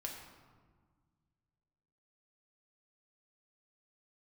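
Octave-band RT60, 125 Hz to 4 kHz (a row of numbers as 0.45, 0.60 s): 2.6, 2.3, 1.6, 1.6, 1.1, 0.85 s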